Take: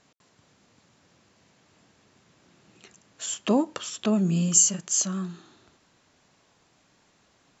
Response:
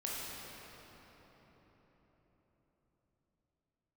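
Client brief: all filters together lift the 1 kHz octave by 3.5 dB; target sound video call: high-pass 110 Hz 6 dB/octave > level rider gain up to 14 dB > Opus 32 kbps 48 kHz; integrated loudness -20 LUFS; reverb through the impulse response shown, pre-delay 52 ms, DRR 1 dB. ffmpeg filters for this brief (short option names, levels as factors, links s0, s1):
-filter_complex "[0:a]equalizer=f=1000:t=o:g=4.5,asplit=2[s0][s1];[1:a]atrim=start_sample=2205,adelay=52[s2];[s1][s2]afir=irnorm=-1:irlink=0,volume=0.631[s3];[s0][s3]amix=inputs=2:normalize=0,highpass=f=110:p=1,dynaudnorm=m=5.01,volume=1.58" -ar 48000 -c:a libopus -b:a 32k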